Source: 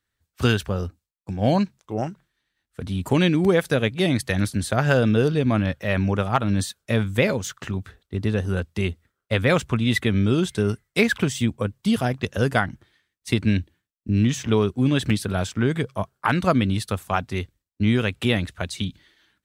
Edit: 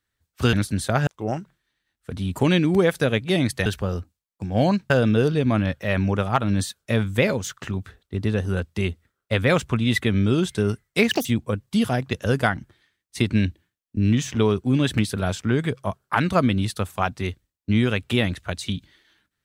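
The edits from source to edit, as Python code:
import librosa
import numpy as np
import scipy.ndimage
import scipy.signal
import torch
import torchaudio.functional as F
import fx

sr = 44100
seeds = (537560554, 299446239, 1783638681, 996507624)

y = fx.edit(x, sr, fx.swap(start_s=0.53, length_s=1.24, other_s=4.36, other_length_s=0.54),
    fx.speed_span(start_s=11.11, length_s=0.26, speed=1.84), tone=tone)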